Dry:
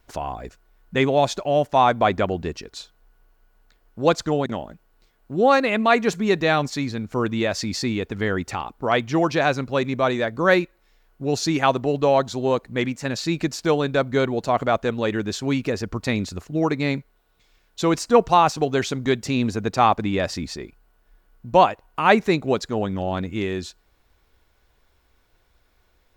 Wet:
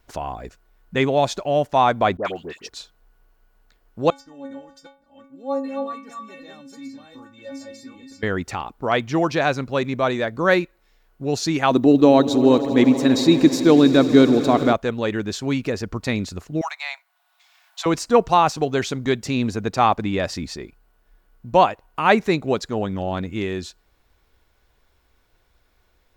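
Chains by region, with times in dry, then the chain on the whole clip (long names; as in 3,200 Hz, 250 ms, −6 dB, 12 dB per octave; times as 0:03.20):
0:02.17–0:02.69: high-pass filter 550 Hz 6 dB per octave + all-pass dispersion highs, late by 75 ms, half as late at 1,400 Hz
0:04.10–0:08.23: delay that plays each chunk backwards 385 ms, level −3 dB + dynamic equaliser 2,600 Hz, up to −8 dB, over −36 dBFS, Q 0.86 + stiff-string resonator 270 Hz, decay 0.41 s, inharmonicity 0.008
0:11.71–0:14.73: high-shelf EQ 8,800 Hz +8 dB + hollow resonant body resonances 280/3,800 Hz, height 14 dB, ringing for 30 ms + echo that builds up and dies away 80 ms, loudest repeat 5, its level −18 dB
0:16.61–0:17.86: Chebyshev high-pass filter 680 Hz, order 6 + multiband upward and downward compressor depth 40%
whole clip: no processing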